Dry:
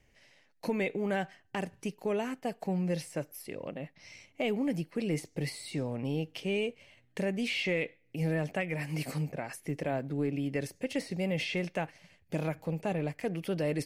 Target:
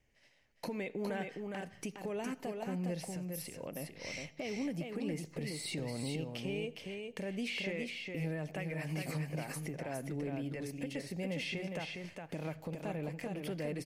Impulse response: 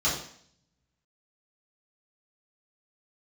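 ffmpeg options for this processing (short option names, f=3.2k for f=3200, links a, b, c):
-filter_complex "[0:a]agate=range=-16dB:threshold=-58dB:ratio=16:detection=peak,acompressor=threshold=-46dB:ratio=2.5,alimiter=level_in=14.5dB:limit=-24dB:level=0:latency=1:release=381,volume=-14.5dB,asettb=1/sr,asplit=3[a][b][c];[a]atrim=end=3.044[d];[b]atrim=start=3.04:end=3.59,asetpts=PTS-STARTPTS,afade=t=in:d=0.004:c=qsin,afade=t=out:st=0.546:d=0.004:c=qsin,acrossover=split=140|3000[e][f][g];[f]acompressor=threshold=-58dB:ratio=6[h];[e][h][g]amix=inputs=3:normalize=0[i];[c]atrim=start=3.586[j];[d][i]acrossfade=d=0.004:c1=hsin:c2=qsin[k];[k][j]acrossfade=d=0.004:c1=qsin:c2=hsin,aecho=1:1:411:0.596,asplit=2[l][m];[1:a]atrim=start_sample=2205,adelay=71[n];[m][n]afir=irnorm=-1:irlink=0,volume=-33dB[o];[l][o]amix=inputs=2:normalize=0,volume=8.5dB"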